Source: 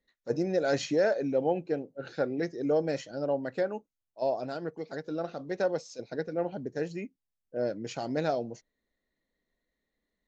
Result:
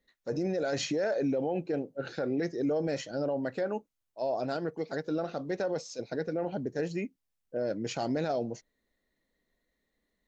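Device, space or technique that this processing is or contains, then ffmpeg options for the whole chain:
stacked limiters: -af "alimiter=limit=-22.5dB:level=0:latency=1:release=51,alimiter=level_in=2.5dB:limit=-24dB:level=0:latency=1:release=13,volume=-2.5dB,volume=3.5dB"

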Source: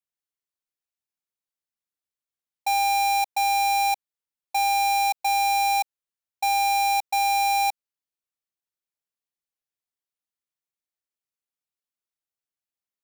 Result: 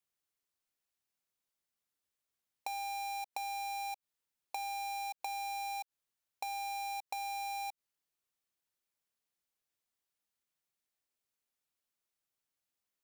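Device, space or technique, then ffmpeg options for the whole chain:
de-esser from a sidechain: -filter_complex "[0:a]asplit=2[link_01][link_02];[link_02]highpass=frequency=5500:width=0.5412,highpass=frequency=5500:width=1.3066,apad=whole_len=574812[link_03];[link_01][link_03]sidechaincompress=threshold=-49dB:ratio=10:attack=3.5:release=78,volume=3dB"

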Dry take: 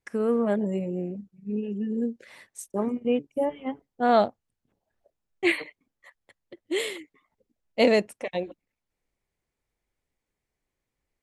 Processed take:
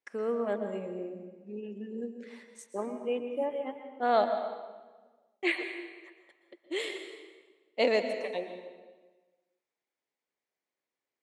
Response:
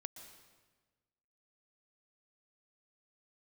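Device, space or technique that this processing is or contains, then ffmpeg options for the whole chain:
supermarket ceiling speaker: -filter_complex "[0:a]highpass=340,lowpass=6800[link_01];[1:a]atrim=start_sample=2205[link_02];[link_01][link_02]afir=irnorm=-1:irlink=0"

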